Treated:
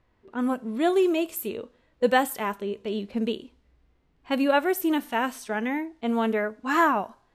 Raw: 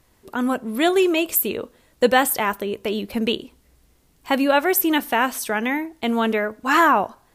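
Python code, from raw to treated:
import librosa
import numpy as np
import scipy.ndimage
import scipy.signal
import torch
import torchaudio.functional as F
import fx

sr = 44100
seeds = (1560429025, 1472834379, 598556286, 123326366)

y = fx.env_lowpass(x, sr, base_hz=2600.0, full_db=-17.0)
y = fx.hpss(y, sr, part='percussive', gain_db=-10)
y = y * 10.0 ** (-3.5 / 20.0)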